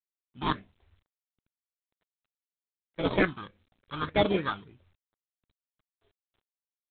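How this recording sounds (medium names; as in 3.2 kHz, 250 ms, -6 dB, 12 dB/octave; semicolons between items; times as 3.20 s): aliases and images of a low sample rate 2.8 kHz, jitter 0%; phasing stages 6, 1.7 Hz, lowest notch 510–1700 Hz; G.726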